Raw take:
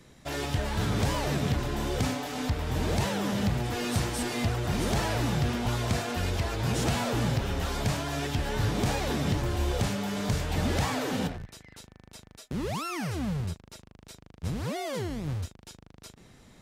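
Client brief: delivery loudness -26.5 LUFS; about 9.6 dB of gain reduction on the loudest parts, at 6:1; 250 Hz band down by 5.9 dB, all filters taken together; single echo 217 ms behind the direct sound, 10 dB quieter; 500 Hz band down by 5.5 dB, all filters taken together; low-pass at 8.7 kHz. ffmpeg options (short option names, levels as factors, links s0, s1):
-af "lowpass=8700,equalizer=f=250:t=o:g=-7,equalizer=f=500:t=o:g=-5,acompressor=threshold=0.0178:ratio=6,aecho=1:1:217:0.316,volume=3.98"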